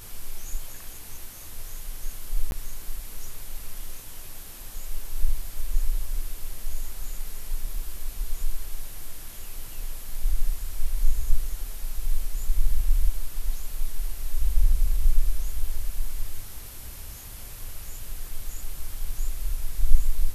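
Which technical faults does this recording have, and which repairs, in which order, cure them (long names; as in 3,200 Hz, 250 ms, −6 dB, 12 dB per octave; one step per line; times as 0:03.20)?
0:02.51–0:02.52: drop-out 11 ms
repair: repair the gap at 0:02.51, 11 ms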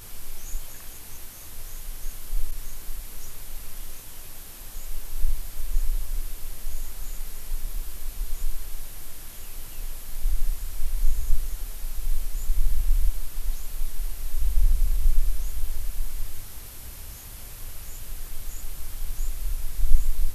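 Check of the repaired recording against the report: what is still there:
none of them is left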